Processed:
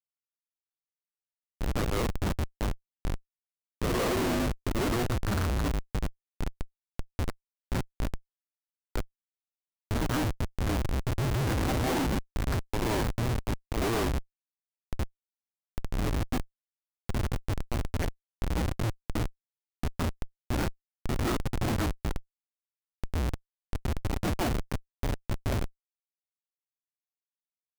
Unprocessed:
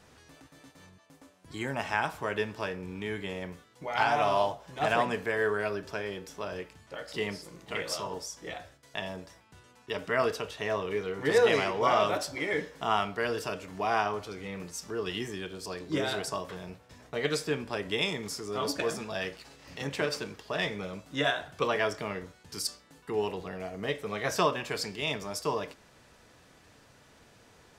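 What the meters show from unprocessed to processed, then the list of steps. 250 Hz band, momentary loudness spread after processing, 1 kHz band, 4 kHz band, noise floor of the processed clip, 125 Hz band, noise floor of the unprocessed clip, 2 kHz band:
+4.5 dB, 11 LU, -5.5 dB, -5.0 dB, under -85 dBFS, +10.5 dB, -59 dBFS, -6.5 dB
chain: reverse echo 0.164 s -7.5 dB; mistuned SSB -350 Hz 340–2100 Hz; Schmitt trigger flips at -29.5 dBFS; gain +6 dB

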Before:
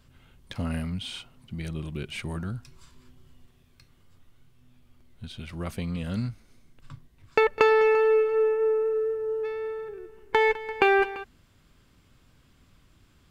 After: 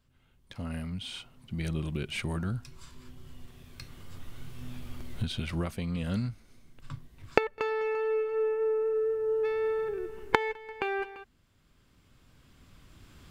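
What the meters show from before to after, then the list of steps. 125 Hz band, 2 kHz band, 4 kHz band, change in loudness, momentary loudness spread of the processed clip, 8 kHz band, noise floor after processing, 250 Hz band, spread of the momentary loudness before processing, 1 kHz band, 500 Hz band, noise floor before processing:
0.0 dB, -7.0 dB, -2.5 dB, -6.0 dB, 20 LU, n/a, -65 dBFS, -1.5 dB, 20 LU, -7.0 dB, -6.0 dB, -61 dBFS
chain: recorder AGC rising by 8.1 dB/s; gain -12 dB

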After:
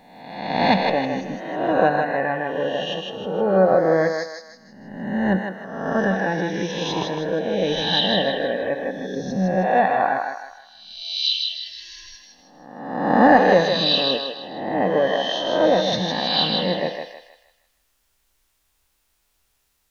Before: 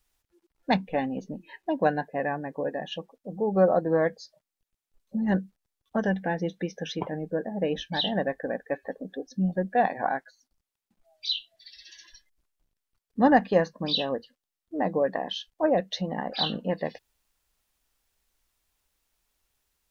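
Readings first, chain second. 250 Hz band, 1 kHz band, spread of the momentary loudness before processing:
+5.5 dB, +8.5 dB, 14 LU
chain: spectral swells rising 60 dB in 1.08 s; thinning echo 0.157 s, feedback 42%, high-pass 570 Hz, level -3.5 dB; gain +3 dB

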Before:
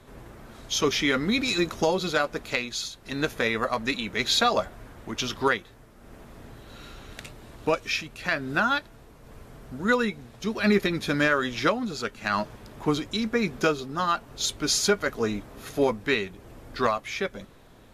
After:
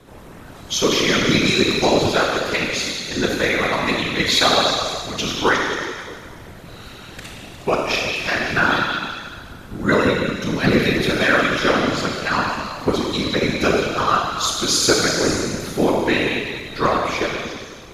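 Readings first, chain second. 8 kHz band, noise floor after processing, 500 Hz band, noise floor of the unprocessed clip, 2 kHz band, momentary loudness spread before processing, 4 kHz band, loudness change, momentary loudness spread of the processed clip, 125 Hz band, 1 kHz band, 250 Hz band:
+8.5 dB, -39 dBFS, +7.0 dB, -51 dBFS, +8.0 dB, 14 LU, +9.0 dB, +7.5 dB, 15 LU, +9.0 dB, +7.5 dB, +7.0 dB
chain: delay with a stepping band-pass 0.18 s, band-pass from 3100 Hz, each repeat 0.7 oct, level -4.5 dB; Schroeder reverb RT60 1.8 s, combs from 25 ms, DRR -1 dB; whisperiser; gain +4 dB

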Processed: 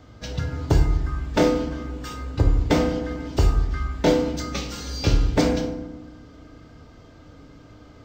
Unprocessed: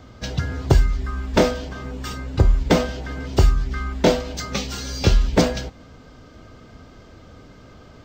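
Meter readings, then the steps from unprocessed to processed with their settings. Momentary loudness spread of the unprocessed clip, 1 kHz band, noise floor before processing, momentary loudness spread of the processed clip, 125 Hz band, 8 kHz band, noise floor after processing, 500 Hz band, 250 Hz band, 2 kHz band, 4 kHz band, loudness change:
12 LU, -2.5 dB, -46 dBFS, 12 LU, -2.0 dB, -4.0 dB, -48 dBFS, -1.5 dB, 0.0 dB, -3.5 dB, -4.0 dB, -2.0 dB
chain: FDN reverb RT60 1.1 s, low-frequency decay 1.55×, high-frequency decay 0.5×, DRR 3.5 dB; gain -5 dB

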